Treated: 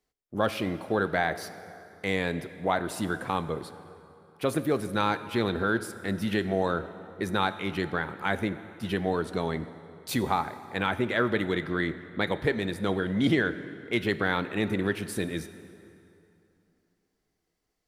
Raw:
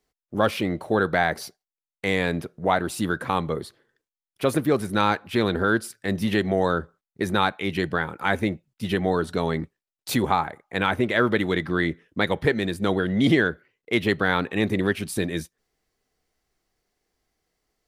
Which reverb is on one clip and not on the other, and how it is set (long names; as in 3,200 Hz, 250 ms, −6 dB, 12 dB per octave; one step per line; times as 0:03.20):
dense smooth reverb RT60 2.9 s, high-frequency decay 0.7×, DRR 12 dB
level −5 dB